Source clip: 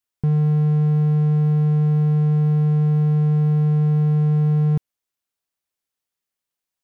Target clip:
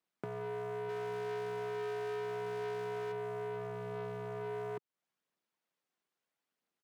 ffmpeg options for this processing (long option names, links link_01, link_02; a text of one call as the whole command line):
ffmpeg -i in.wav -filter_complex "[0:a]aeval=exprs='val(0)*sin(2*PI*270*n/s)':channel_layout=same,acrusher=bits=3:mode=log:mix=0:aa=0.000001,lowpass=frequency=1700:poles=1,asplit=3[link_01][link_02][link_03];[link_01]afade=type=out:start_time=0.88:duration=0.02[link_04];[link_02]aecho=1:1:100|215|347.2|499.3|674.2:0.631|0.398|0.251|0.158|0.1,afade=type=in:start_time=0.88:duration=0.02,afade=type=out:start_time=3.11:duration=0.02[link_05];[link_03]afade=type=in:start_time=3.11:duration=0.02[link_06];[link_04][link_05][link_06]amix=inputs=3:normalize=0,volume=24dB,asoftclip=hard,volume=-24dB,aphaser=in_gain=1:out_gain=1:delay=3:decay=0.29:speed=0.75:type=triangular,asoftclip=type=tanh:threshold=-28.5dB,acompressor=threshold=-46dB:ratio=6,highpass=frequency=150:width=0.5412,highpass=frequency=150:width=1.3066,volume=6.5dB" out.wav